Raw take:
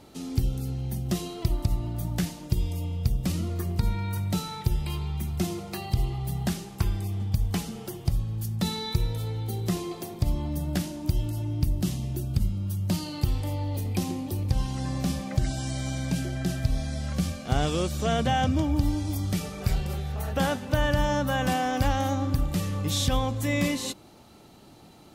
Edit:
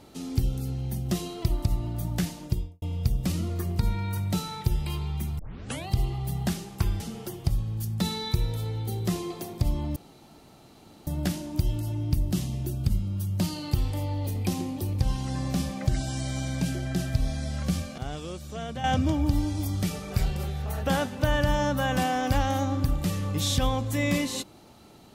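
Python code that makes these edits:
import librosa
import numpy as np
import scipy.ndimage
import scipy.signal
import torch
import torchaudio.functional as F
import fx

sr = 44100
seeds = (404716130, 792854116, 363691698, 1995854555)

y = fx.studio_fade_out(x, sr, start_s=2.43, length_s=0.39)
y = fx.edit(y, sr, fx.tape_start(start_s=5.39, length_s=0.49),
    fx.cut(start_s=7.0, length_s=0.61),
    fx.insert_room_tone(at_s=10.57, length_s=1.11),
    fx.clip_gain(start_s=17.48, length_s=0.86, db=-10.0), tone=tone)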